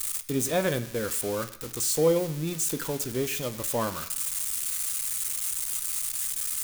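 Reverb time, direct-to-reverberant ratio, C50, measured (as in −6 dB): 1.0 s, 7.5 dB, 15.0 dB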